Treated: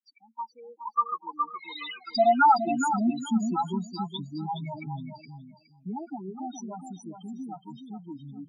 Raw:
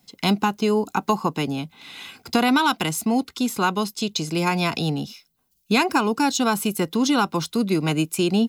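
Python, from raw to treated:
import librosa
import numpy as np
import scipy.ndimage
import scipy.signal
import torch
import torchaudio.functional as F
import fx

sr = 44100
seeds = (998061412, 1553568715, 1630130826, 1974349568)

p1 = fx.spec_expand(x, sr, power=2.3)
p2 = fx.doppler_pass(p1, sr, speed_mps=37, closest_m=19.0, pass_at_s=1.95)
p3 = scipy.signal.sosfilt(scipy.signal.butter(2, 6800.0, 'lowpass', fs=sr, output='sos'), p2)
p4 = fx.peak_eq(p3, sr, hz=120.0, db=-8.0, octaves=2.7)
p5 = np.sign(p4) * np.maximum(np.abs(p4) - 10.0 ** (-54.5 / 20.0), 0.0)
p6 = p4 + F.gain(torch.from_numpy(p5), -4.5).numpy()
p7 = fx.spec_topn(p6, sr, count=4)
p8 = p7 + fx.echo_feedback(p7, sr, ms=417, feedback_pct=19, wet_db=-8.0, dry=0)
p9 = fx.filter_sweep_highpass(p8, sr, from_hz=1500.0, to_hz=98.0, start_s=0.97, end_s=4.38, q=1.9)
y = F.gain(torch.from_numpy(p9), 2.5).numpy()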